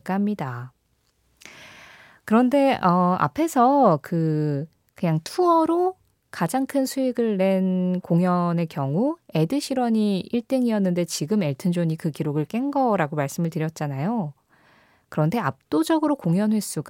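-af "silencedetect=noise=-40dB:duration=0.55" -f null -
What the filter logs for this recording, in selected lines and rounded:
silence_start: 0.68
silence_end: 1.42 | silence_duration: 0.74
silence_start: 14.31
silence_end: 15.12 | silence_duration: 0.81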